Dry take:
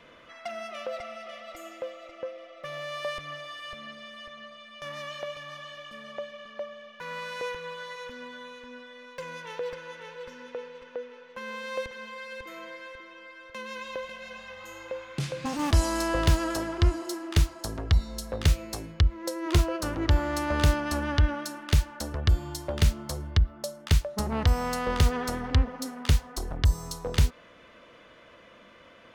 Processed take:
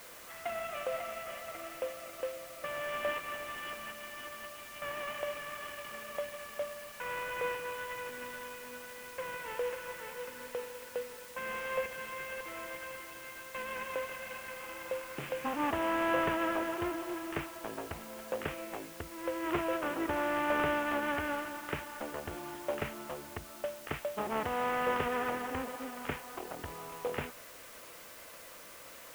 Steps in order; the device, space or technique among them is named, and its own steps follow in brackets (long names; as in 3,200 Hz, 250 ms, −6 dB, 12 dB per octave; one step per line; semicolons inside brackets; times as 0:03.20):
army field radio (band-pass filter 360–3,000 Hz; variable-slope delta modulation 16 kbit/s; white noise bed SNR 15 dB)